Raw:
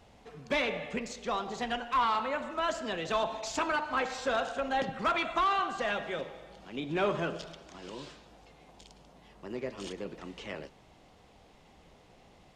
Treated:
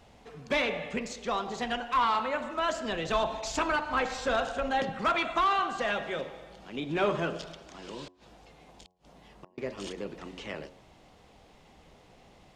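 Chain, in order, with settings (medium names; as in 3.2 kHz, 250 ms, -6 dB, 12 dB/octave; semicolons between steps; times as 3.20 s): 2.85–4.71 s: bass shelf 82 Hz +12 dB; 8.06–9.58 s: inverted gate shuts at -37 dBFS, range -34 dB; de-hum 90.88 Hz, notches 12; trim +2 dB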